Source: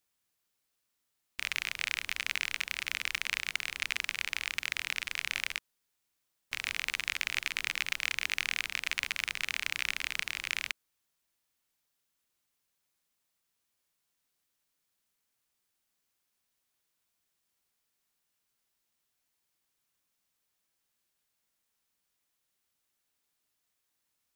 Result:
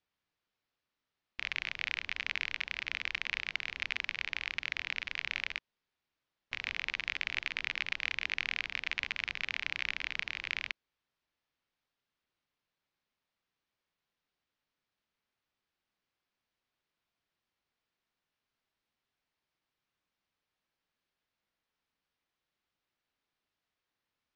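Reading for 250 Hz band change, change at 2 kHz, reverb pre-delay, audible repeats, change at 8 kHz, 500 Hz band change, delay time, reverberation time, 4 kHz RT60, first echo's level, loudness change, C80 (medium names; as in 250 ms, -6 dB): 0.0 dB, -1.5 dB, no reverb, no echo, -15.0 dB, 0.0 dB, no echo, no reverb, no reverb, no echo, -2.5 dB, no reverb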